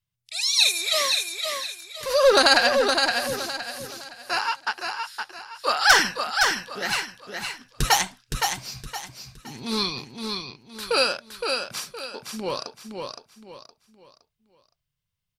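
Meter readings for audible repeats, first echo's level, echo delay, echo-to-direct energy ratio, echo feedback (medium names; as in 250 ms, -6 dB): 4, -5.0 dB, 516 ms, -4.5 dB, 33%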